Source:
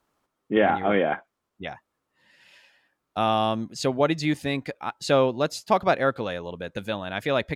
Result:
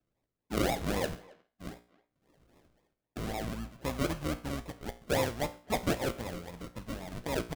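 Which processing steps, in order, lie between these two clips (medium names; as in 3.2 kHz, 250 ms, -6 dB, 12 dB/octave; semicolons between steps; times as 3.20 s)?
octave divider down 2 oct, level -5 dB; steep low-pass 3.3 kHz 72 dB/octave; peaking EQ 390 Hz -8 dB 0.51 oct; 1.05–3.73 s: compression, threshold -25 dBFS, peak gain reduction 6 dB; decimation with a swept rate 41×, swing 60% 3.8 Hz; feedback comb 59 Hz, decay 0.41 s, harmonics all, mix 60%; speakerphone echo 270 ms, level -20 dB; trim -3 dB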